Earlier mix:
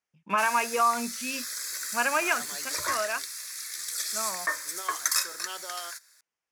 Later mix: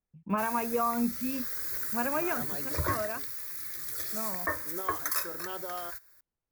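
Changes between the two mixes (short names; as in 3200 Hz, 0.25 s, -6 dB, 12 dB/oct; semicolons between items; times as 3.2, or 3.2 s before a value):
first voice -6.0 dB; master: remove weighting filter ITU-R 468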